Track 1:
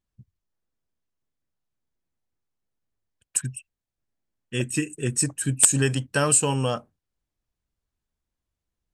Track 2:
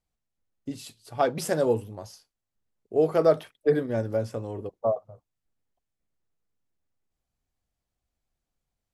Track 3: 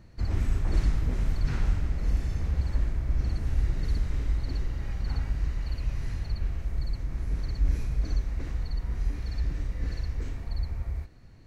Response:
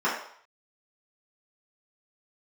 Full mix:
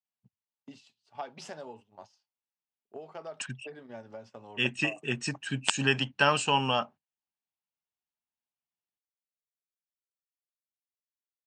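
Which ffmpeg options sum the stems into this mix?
-filter_complex "[0:a]lowpass=4600,adelay=50,volume=1.06[s0];[1:a]acompressor=threshold=0.0282:ratio=5,volume=0.531[s1];[s0][s1]amix=inputs=2:normalize=0,agate=range=0.224:threshold=0.00562:ratio=16:detection=peak,highpass=230,equalizer=f=320:t=q:w=4:g=-9,equalizer=f=490:t=q:w=4:g=-9,equalizer=f=870:t=q:w=4:g=6,equalizer=f=2800:t=q:w=4:g=7,lowpass=f=6600:w=0.5412,lowpass=f=6600:w=1.3066"

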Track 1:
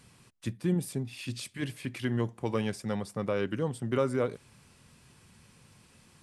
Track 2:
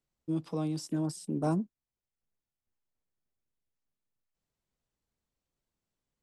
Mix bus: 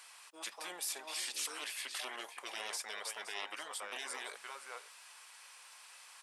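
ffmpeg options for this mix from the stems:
-filter_complex "[0:a]volume=1.06,asplit=3[s0][s1][s2];[s1]volume=0.2[s3];[1:a]adelay=50,volume=0.708,asplit=2[s4][s5];[s5]volume=0.158[s6];[s2]apad=whole_len=276944[s7];[s4][s7]sidechaincompress=threshold=0.0141:ratio=8:attack=9.8:release=132[s8];[s3][s6]amix=inputs=2:normalize=0,aecho=0:1:518:1[s9];[s0][s8][s9]amix=inputs=3:normalize=0,acontrast=54,highpass=f=780:w=0.5412,highpass=f=780:w=1.3066,afftfilt=real='re*lt(hypot(re,im),0.0355)':imag='im*lt(hypot(re,im),0.0355)':win_size=1024:overlap=0.75"

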